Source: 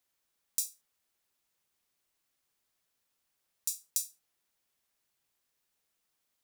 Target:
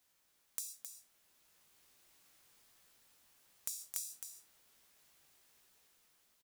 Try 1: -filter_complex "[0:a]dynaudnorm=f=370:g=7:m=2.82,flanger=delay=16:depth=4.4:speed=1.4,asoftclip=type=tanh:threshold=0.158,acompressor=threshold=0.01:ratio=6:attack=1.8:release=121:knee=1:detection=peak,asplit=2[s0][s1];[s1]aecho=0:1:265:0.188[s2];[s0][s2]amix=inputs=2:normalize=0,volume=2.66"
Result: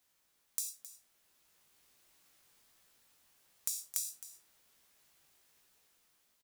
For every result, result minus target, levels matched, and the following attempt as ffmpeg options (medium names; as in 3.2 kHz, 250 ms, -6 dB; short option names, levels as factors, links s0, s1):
compression: peak gain reduction -5.5 dB; echo-to-direct -7 dB
-filter_complex "[0:a]dynaudnorm=f=370:g=7:m=2.82,flanger=delay=16:depth=4.4:speed=1.4,asoftclip=type=tanh:threshold=0.158,acompressor=threshold=0.00473:ratio=6:attack=1.8:release=121:knee=1:detection=peak,asplit=2[s0][s1];[s1]aecho=0:1:265:0.188[s2];[s0][s2]amix=inputs=2:normalize=0,volume=2.66"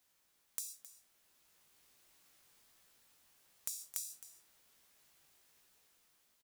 echo-to-direct -7 dB
-filter_complex "[0:a]dynaudnorm=f=370:g=7:m=2.82,flanger=delay=16:depth=4.4:speed=1.4,asoftclip=type=tanh:threshold=0.158,acompressor=threshold=0.00473:ratio=6:attack=1.8:release=121:knee=1:detection=peak,asplit=2[s0][s1];[s1]aecho=0:1:265:0.422[s2];[s0][s2]amix=inputs=2:normalize=0,volume=2.66"